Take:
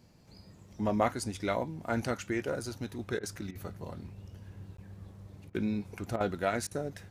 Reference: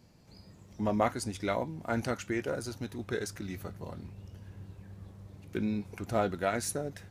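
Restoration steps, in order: interpolate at 4.77 s, 13 ms; interpolate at 3.19/3.51/5.50/6.16/6.67 s, 42 ms

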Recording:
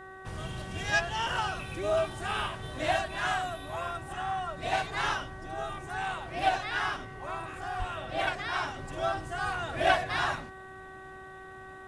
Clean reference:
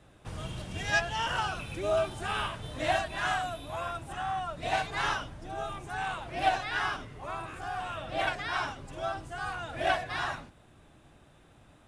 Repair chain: de-hum 379.5 Hz, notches 5; de-plosive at 7.78 s; gain correction -3.5 dB, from 8.74 s

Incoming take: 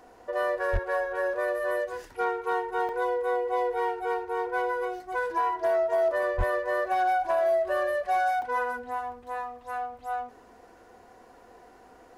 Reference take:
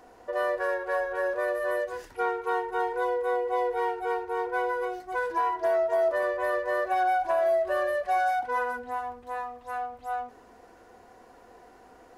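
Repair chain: clip repair -19 dBFS; 0.72–0.84 s: high-pass 140 Hz 24 dB/octave; 6.37–6.49 s: high-pass 140 Hz 24 dB/octave; interpolate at 2.89/8.42 s, 1.5 ms

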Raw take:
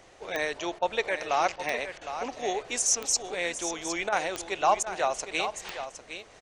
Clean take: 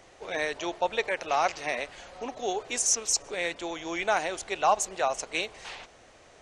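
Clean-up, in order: de-click; interpolate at 0.79/1.56/1.98/4.09/4.83 s, 32 ms; inverse comb 761 ms -10 dB

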